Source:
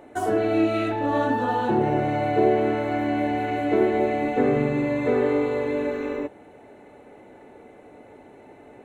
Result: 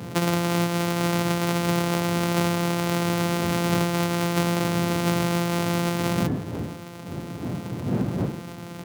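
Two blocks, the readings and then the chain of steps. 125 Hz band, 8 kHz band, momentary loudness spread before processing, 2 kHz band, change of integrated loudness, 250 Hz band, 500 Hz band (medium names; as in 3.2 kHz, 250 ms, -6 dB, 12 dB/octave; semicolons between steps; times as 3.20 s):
+8.0 dB, no reading, 5 LU, +2.0 dB, -1.5 dB, +0.5 dB, -5.0 dB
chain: sorted samples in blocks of 256 samples; wind noise 200 Hz -35 dBFS; high-pass 100 Hz 24 dB/octave; compression 6:1, threshold -27 dBFS, peak gain reduction 13.5 dB; de-hum 156.7 Hz, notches 18; trim +8.5 dB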